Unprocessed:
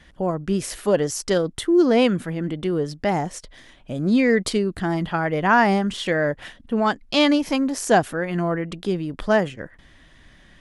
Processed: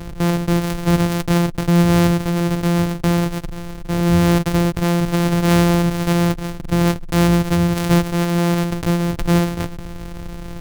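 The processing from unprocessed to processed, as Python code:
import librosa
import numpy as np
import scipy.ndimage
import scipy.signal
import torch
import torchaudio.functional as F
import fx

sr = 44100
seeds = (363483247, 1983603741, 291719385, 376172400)

y = np.r_[np.sort(x[:len(x) // 256 * 256].reshape(-1, 256), axis=1).ravel(), x[len(x) // 256 * 256:]]
y = fx.low_shelf(y, sr, hz=330.0, db=8.0)
y = fx.env_flatten(y, sr, amount_pct=50)
y = y * librosa.db_to_amplitude(-4.0)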